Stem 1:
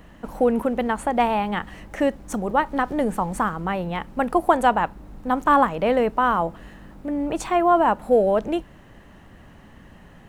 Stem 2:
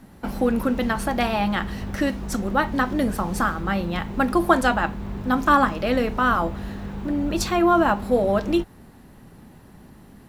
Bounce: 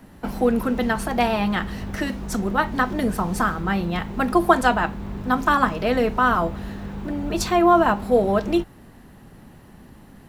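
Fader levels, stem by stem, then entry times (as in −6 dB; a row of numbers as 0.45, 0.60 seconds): −7.0, 0.0 decibels; 0.00, 0.00 seconds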